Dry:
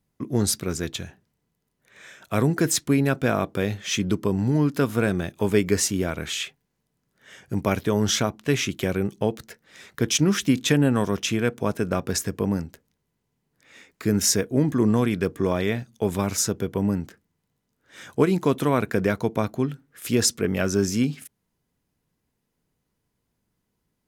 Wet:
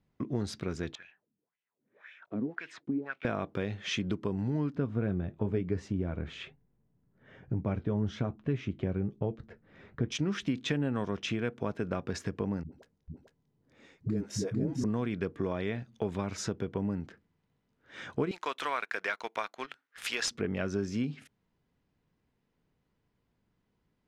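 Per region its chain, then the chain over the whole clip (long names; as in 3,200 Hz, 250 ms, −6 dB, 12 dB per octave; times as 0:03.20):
0:00.95–0:03.25: one scale factor per block 5 bits + LFO wah 1.9 Hz 230–2,700 Hz, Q 3.7
0:04.75–0:10.12: spectral tilt −3 dB per octave + flanger 1.1 Hz, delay 6.4 ms, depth 4.7 ms, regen −63% + one half of a high-frequency compander decoder only
0:12.63–0:14.84: parametric band 2,100 Hz −11 dB 2.5 octaves + all-pass dispersion highs, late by 92 ms, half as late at 340 Hz + single-tap delay 448 ms −4.5 dB
0:18.31–0:20.31: high-pass filter 1,200 Hz + high-shelf EQ 9,500 Hz +5.5 dB + leveller curve on the samples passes 2
whole clip: low-pass filter 3,600 Hz 12 dB per octave; downward compressor 2.5 to 1, threshold −33 dBFS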